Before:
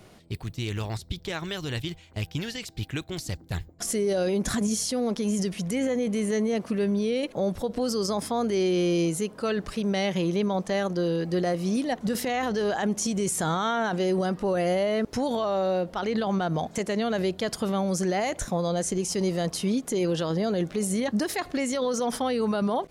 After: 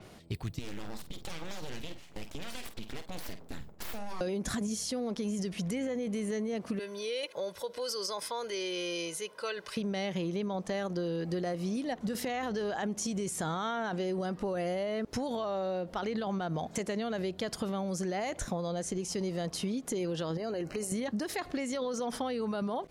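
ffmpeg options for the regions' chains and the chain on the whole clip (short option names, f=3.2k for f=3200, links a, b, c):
-filter_complex "[0:a]asettb=1/sr,asplit=3[a][b][c];[a]atrim=end=0.594[d];[b]atrim=start=0.59:end=4.21,asetpts=PTS-STARTPTS,afade=t=in:d=0.004:c=qsin,afade=t=out:st=3.616:d=0.004:c=qsin,acompressor=threshold=-34dB:ratio=6:attack=3.2:release=140:knee=1:detection=peak,aeval=exprs='abs(val(0))':c=same,asplit=2[e][f];[f]adelay=49,volume=-10dB[g];[e][g]amix=inputs=2:normalize=0,atrim=end_sample=159642[h];[c]atrim=start=4.206[i];[d][h]acrossfade=d=0.004:c1=hsin:c2=qsin[j];[j][i]acrossfade=d=0.004:c1=qsin:c2=hsin,asettb=1/sr,asplit=3[k][l][m];[k]atrim=end=6.794[n];[l]atrim=start=6.79:end=9.77,asetpts=PTS-STARTPTS,afade=t=in:d=0.004:c=qsin,afade=t=out:st=2.976:d=0.004:c=qsin,highpass=f=1.5k:p=1,equalizer=f=7.3k:w=7.1:g=-6.5,aecho=1:1:2:0.62,atrim=end_sample=131418[o];[m]atrim=start=9.766[p];[n][o]acrossfade=d=0.004:c1=hsin:c2=qsin[q];[q][p]acrossfade=d=0.004:c1=qsin:c2=hsin,asettb=1/sr,asplit=3[r][s][t];[r]atrim=end=20.374[u];[s]atrim=start=20.37:end=20.92,asetpts=PTS-STARTPTS,afade=t=in:d=0.004:c=qsin,afade=t=out:st=0.546:d=0.004:c=qsin,equalizer=f=190:t=o:w=0.28:g=-12.5,acompressor=threshold=-30dB:ratio=2.5:attack=3.2:release=140:knee=1:detection=peak,asuperstop=centerf=3500:order=20:qfactor=5[v];[t]atrim=start=20.916[w];[u][v]acrossfade=d=0.004:c1=hsin:c2=qsin[x];[x][w]acrossfade=d=0.004:c1=qsin:c2=hsin,acompressor=threshold=-31dB:ratio=6,adynamicequalizer=threshold=0.00224:dfrequency=6500:dqfactor=0.7:tfrequency=6500:tqfactor=0.7:attack=5:release=100:ratio=0.375:range=2.5:mode=cutabove:tftype=highshelf"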